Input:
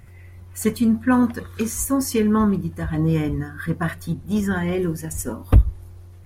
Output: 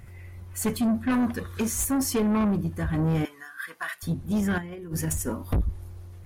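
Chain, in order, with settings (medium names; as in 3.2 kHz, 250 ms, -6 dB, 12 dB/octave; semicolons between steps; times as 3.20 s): 3.25–4.03 s: high-pass 1.3 kHz 12 dB/octave; 4.58–5.22 s: compressor with a negative ratio -29 dBFS, ratio -0.5; saturation -20 dBFS, distortion -7 dB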